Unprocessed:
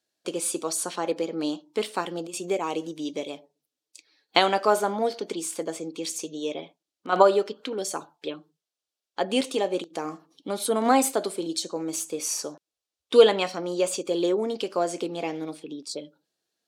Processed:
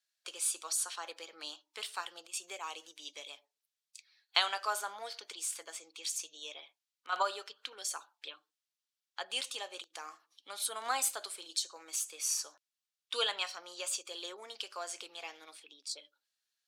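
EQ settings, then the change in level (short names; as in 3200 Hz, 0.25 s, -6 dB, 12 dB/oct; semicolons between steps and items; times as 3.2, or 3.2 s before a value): Chebyshev high-pass 1600 Hz, order 2; dynamic EQ 2100 Hz, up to -6 dB, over -50 dBFS, Q 2.4; -3.0 dB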